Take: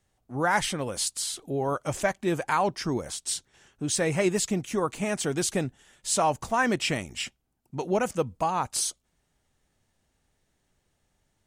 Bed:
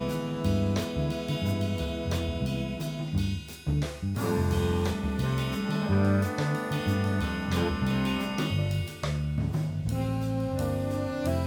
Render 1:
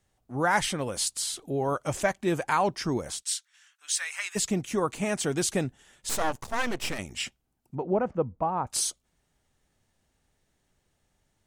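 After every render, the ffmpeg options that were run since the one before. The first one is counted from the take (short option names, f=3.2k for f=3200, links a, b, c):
-filter_complex "[0:a]asplit=3[a][b][c];[a]afade=t=out:st=3.21:d=0.02[d];[b]highpass=f=1.3k:w=0.5412,highpass=f=1.3k:w=1.3066,afade=t=in:st=3.21:d=0.02,afade=t=out:st=4.35:d=0.02[e];[c]afade=t=in:st=4.35:d=0.02[f];[d][e][f]amix=inputs=3:normalize=0,asettb=1/sr,asplit=3[g][h][i];[g]atrim=end=6.094[j];[h]atrim=start=6.09:end=6.99,asetpts=PTS-STARTPTS,afade=t=in:d=0.004:c=qsin,afade=t=out:st=0.896:d=0.004:c=qsin,aeval=exprs='max(val(0),0)':c=same[k];[i]atrim=start=6.986[l];[j][k]acrossfade=d=0.004:c1=hsin:c2=qsin[m];[m][l]acrossfade=d=0.004:c1=qsin:c2=hsin,asettb=1/sr,asplit=3[n][o][p];[n]atrim=end=7.754[q];[o]atrim=start=7.75:end=8.67,asetpts=PTS-STARTPTS,afade=t=in:d=0.004:c=qsin,afade=t=out:st=0.916:d=0.004:c=qsin,lowpass=1.1k[r];[p]atrim=start=8.666[s];[q][r]acrossfade=d=0.004:c1=hsin:c2=qsin[t];[t][s]acrossfade=d=0.004:c1=qsin:c2=hsin"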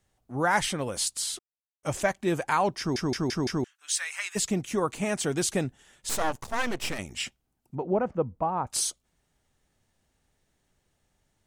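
-filter_complex "[0:a]asplit=8[a][b][c][d][e][f][g][h];[a]atrim=end=1.39,asetpts=PTS-STARTPTS,afade=t=out:st=1.386:d=0.004:c=hsin[i];[b]atrim=start=1.39:end=1.83,asetpts=PTS-STARTPTS,volume=0[j];[c]atrim=start=1.83:end=2.962,asetpts=PTS-STARTPTS,afade=t=in:d=0.004:c=hsin[k];[d]atrim=start=2.788:end=2.962[l];[e]atrim=start=2.788:end=2.962[m];[f]atrim=start=2.788:end=2.962[n];[g]atrim=start=2.788:end=2.962[o];[h]atrim=start=3.638[p];[i][j][k]concat=n=3:v=0:a=1[q];[q][l]acrossfade=d=0.004:c1=hsin:c2=hsin[r];[r][m]acrossfade=d=0.004:c1=hsin:c2=hsin[s];[s][n]acrossfade=d=0.004:c1=hsin:c2=hsin[t];[t][o]acrossfade=d=0.004:c1=hsin:c2=hsin[u];[u][p]acrossfade=d=0.004:c1=hsin:c2=hsin"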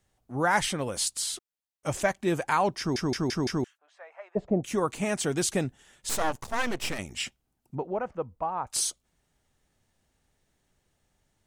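-filter_complex "[0:a]asplit=3[a][b][c];[a]afade=t=out:st=3.77:d=0.02[d];[b]lowpass=f=630:t=q:w=3.6,afade=t=in:st=3.77:d=0.02,afade=t=out:st=4.63:d=0.02[e];[c]afade=t=in:st=4.63:d=0.02[f];[d][e][f]amix=inputs=3:normalize=0,asettb=1/sr,asplit=3[g][h][i];[g]atrim=end=7.834[j];[h]atrim=start=7.83:end=8.75,asetpts=PTS-STARTPTS,afade=t=in:d=0.004:c=qsin,afade=t=out:st=0.916:d=0.004:c=qsin,equalizer=f=190:w=0.45:g=-10[k];[i]atrim=start=8.746[l];[j][k]acrossfade=d=0.004:c1=hsin:c2=qsin[m];[m][l]acrossfade=d=0.004:c1=qsin:c2=hsin"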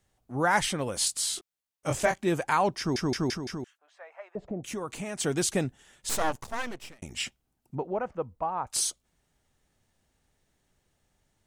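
-filter_complex "[0:a]asettb=1/sr,asplit=3[a][b][c];[a]atrim=end=0.984[d];[b]atrim=start=0.98:end=2.25,asetpts=PTS-STARTPTS,afade=t=in:d=0.004:c=qsin,afade=t=out:st=1.266:d=0.004:c=qsin,asplit=2[e][f];[f]adelay=23,volume=-4dB[g];[e][g]amix=inputs=2:normalize=0,atrim=end_sample=56007[h];[c]atrim=start=2.246[i];[d][h]acrossfade=d=0.004:c1=hsin:c2=qsin[j];[j][i]acrossfade=d=0.004:c1=qsin:c2=hsin,asettb=1/sr,asplit=3[k][l][m];[k]atrim=end=3.364[n];[l]atrim=start=3.36:end=5.2,asetpts=PTS-STARTPTS,afade=t=in:d=0.004:c=qsin,afade=t=out:st=1.836:d=0.004:c=qsin,acompressor=threshold=-34dB:ratio=2.5:attack=3.2:release=140:knee=1:detection=peak[o];[m]atrim=start=5.196[p];[n][o]acrossfade=d=0.004:c1=hsin:c2=qsin[q];[q][p]acrossfade=d=0.004:c1=qsin:c2=hsin,asplit=2[r][s];[r]atrim=end=7.02,asetpts=PTS-STARTPTS,afade=t=out:st=6.29:d=0.73[t];[s]atrim=start=7.02,asetpts=PTS-STARTPTS,afade=t=in:d=0.004:c=hsin[u];[t][u]concat=n=2:v=0:a=1"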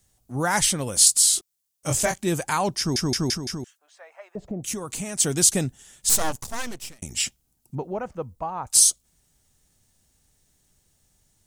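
-af "bass=f=250:g=6,treble=f=4k:g=14"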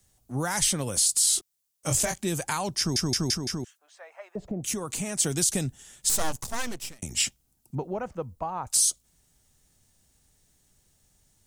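-filter_complex "[0:a]alimiter=limit=-12dB:level=0:latency=1:release=53,acrossover=split=130|3000[a][b][c];[b]acompressor=threshold=-27dB:ratio=6[d];[a][d][c]amix=inputs=3:normalize=0"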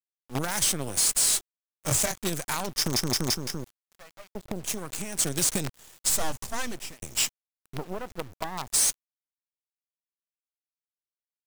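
-af "asoftclip=type=hard:threshold=-18.5dB,acrusher=bits=5:dc=4:mix=0:aa=0.000001"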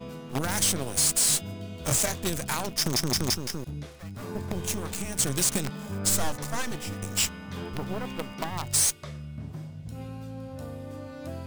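-filter_complex "[1:a]volume=-9.5dB[a];[0:a][a]amix=inputs=2:normalize=0"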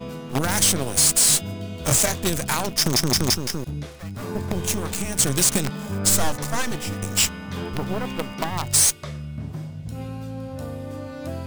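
-af "volume=6dB"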